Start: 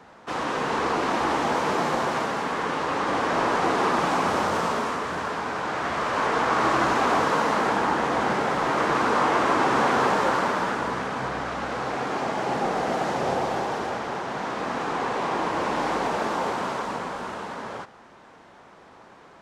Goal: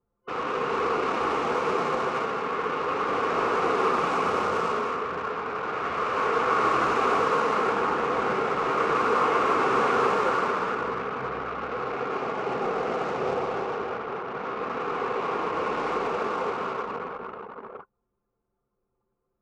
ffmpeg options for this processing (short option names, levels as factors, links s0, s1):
-af "anlmdn=25.1,superequalizer=7b=2.51:10b=2.24:12b=1.78,volume=0.531"